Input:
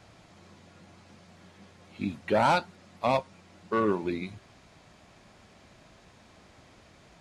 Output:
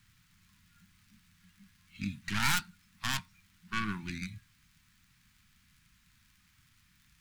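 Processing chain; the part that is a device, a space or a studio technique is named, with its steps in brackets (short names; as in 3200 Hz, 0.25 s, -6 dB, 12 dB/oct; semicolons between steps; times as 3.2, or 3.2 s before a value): spectral noise reduction 11 dB; record under a worn stylus (tracing distortion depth 0.38 ms; crackle; pink noise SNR 34 dB); Chebyshev band-stop 170–1600 Hz, order 2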